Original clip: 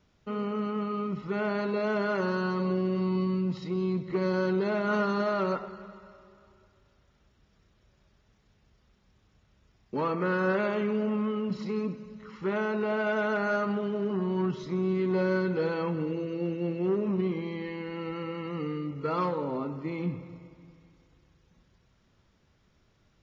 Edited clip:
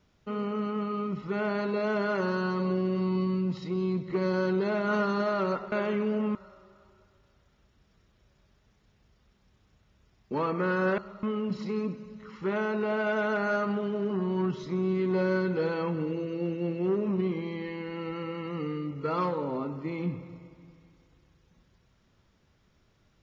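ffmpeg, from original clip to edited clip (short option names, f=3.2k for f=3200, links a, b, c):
-filter_complex "[0:a]asplit=5[a][b][c][d][e];[a]atrim=end=5.722[f];[b]atrim=start=10.598:end=11.232[g];[c]atrim=start=5.968:end=10.602[h];[d]atrim=start=5.718:end=5.972[i];[e]atrim=start=11.228[j];[f][g]acrossfade=d=0.004:c1=hsin:c2=hsin[k];[k][h]acrossfade=d=0.004:c1=hsin:c2=hsin[l];[l][i]acrossfade=d=0.004:c1=hsin:c2=hsin[m];[m][j]acrossfade=d=0.004:c1=hsin:c2=hsin"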